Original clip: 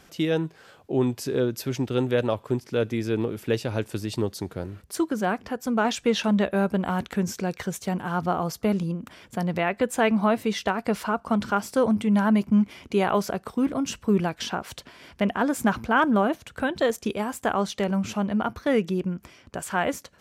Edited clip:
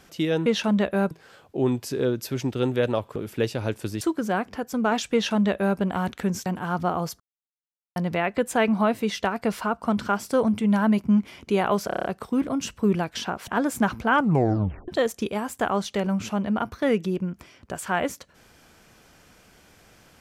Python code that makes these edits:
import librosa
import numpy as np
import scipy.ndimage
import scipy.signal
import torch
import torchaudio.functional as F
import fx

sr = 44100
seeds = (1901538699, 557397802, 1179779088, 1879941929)

y = fx.edit(x, sr, fx.cut(start_s=2.51, length_s=0.75),
    fx.cut(start_s=4.11, length_s=0.83),
    fx.duplicate(start_s=6.06, length_s=0.65, to_s=0.46),
    fx.cut(start_s=7.39, length_s=0.5),
    fx.silence(start_s=8.63, length_s=0.76),
    fx.stutter(start_s=13.3, slice_s=0.03, count=7),
    fx.cut(start_s=14.73, length_s=0.59),
    fx.tape_stop(start_s=15.98, length_s=0.74), tone=tone)